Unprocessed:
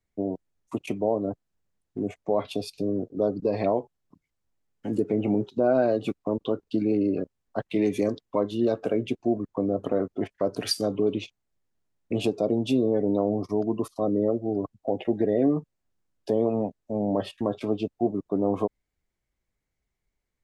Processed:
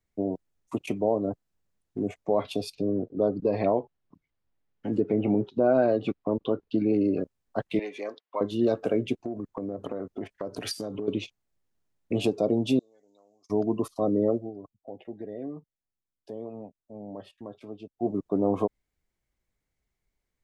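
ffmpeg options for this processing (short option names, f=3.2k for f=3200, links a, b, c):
-filter_complex "[0:a]asettb=1/sr,asplit=3[a][b][c];[a]atrim=end=2.754[d];[b]atrim=start=2.75:end=6.94,asetpts=PTS-STARTPTS,afade=t=in:d=0.004:c=qsin,afade=t=out:st=4.186:d=0.004:c=qsin,lowpass=3.8k[e];[c]atrim=start=6.936[f];[d][e]acrossfade=d=0.004:c1=hsin:c2=qsin[g];[g][f]acrossfade=d=0.004:c1=qsin:c2=hsin,asettb=1/sr,asplit=3[h][i][j];[h]atrim=end=7.794[k];[i]atrim=start=7.79:end=8.41,asetpts=PTS-STARTPTS,afade=t=in:d=0.004:c=qsin,afade=t=out:st=0.616:d=0.004:c=qsin,highpass=750,lowpass=3.4k[l];[j]atrim=start=8.406[m];[k][l]acrossfade=d=0.004:c1=hsin:c2=qsin[n];[n][m]acrossfade=d=0.004:c1=qsin:c2=hsin,asettb=1/sr,asplit=3[o][p][q];[o]atrim=end=9.174[r];[p]atrim=start=9.17:end=11.08,asetpts=PTS-STARTPTS,afade=t=in:d=0.004:c=qsin,afade=t=out:st=1.906:d=0.004:c=qsin,acompressor=threshold=-29dB:ratio=6:attack=3.2:release=140:knee=1:detection=peak[s];[q]atrim=start=11.076[t];[r][s]acrossfade=d=0.004:c1=hsin:c2=qsin[u];[u][t]acrossfade=d=0.004:c1=qsin:c2=hsin,asettb=1/sr,asplit=3[v][w][x];[v]atrim=end=12.794[y];[w]atrim=start=12.79:end=13.5,asetpts=PTS-STARTPTS,afade=t=in:d=0.004:c=qsin,afade=t=out:st=0.706:d=0.004:c=qsin,bandpass=f=6.7k:t=q:w=4.8[z];[x]atrim=start=13.496[aa];[y][z]acrossfade=d=0.004:c1=hsin:c2=qsin[ab];[ab][aa]acrossfade=d=0.004:c1=qsin:c2=hsin,asplit=3[ac][ad][ae];[ac]atrim=end=14.52,asetpts=PTS-STARTPTS,afade=t=out:st=14.34:d=0.18:silence=0.188365[af];[ad]atrim=start=14.52:end=17.94,asetpts=PTS-STARTPTS,volume=-14.5dB[ag];[ae]atrim=start=17.94,asetpts=PTS-STARTPTS,afade=t=in:d=0.18:silence=0.188365[ah];[af][ag][ah]concat=n=3:v=0:a=1"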